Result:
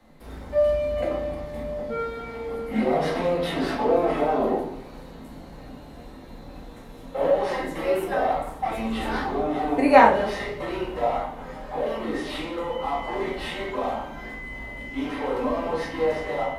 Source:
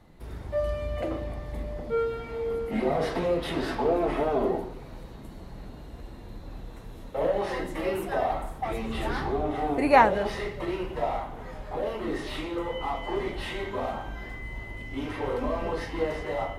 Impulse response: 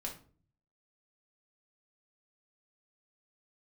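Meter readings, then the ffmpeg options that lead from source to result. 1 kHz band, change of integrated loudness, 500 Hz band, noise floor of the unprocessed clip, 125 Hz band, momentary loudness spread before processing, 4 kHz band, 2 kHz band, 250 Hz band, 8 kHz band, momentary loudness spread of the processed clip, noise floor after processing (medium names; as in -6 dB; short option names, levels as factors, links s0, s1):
+4.0 dB, +4.0 dB, +4.0 dB, -44 dBFS, -1.0 dB, 18 LU, +3.0 dB, +3.5 dB, +4.0 dB, no reading, 20 LU, -43 dBFS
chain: -filter_complex "[0:a]lowshelf=f=130:g=-12,acrossover=split=120|650|3800[s0][s1][s2][s3];[s0]acrusher=bits=4:mode=log:mix=0:aa=0.000001[s4];[s4][s1][s2][s3]amix=inputs=4:normalize=0[s5];[1:a]atrim=start_sample=2205[s6];[s5][s6]afir=irnorm=-1:irlink=0,volume=1.68"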